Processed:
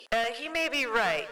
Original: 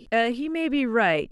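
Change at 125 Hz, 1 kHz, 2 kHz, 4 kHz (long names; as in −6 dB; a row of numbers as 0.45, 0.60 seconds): below −10 dB, −3.5 dB, −2.5 dB, +1.5 dB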